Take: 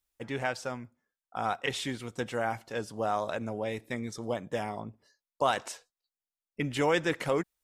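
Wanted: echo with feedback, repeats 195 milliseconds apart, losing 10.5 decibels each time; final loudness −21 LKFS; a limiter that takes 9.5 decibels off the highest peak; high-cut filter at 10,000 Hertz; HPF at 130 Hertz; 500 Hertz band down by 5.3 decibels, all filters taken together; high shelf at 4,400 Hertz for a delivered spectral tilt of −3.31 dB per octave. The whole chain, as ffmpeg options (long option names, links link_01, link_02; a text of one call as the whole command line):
ffmpeg -i in.wav -af "highpass=130,lowpass=10000,equalizer=frequency=500:width_type=o:gain=-6.5,highshelf=frequency=4400:gain=8.5,alimiter=limit=-23dB:level=0:latency=1,aecho=1:1:195|390|585:0.299|0.0896|0.0269,volume=15.5dB" out.wav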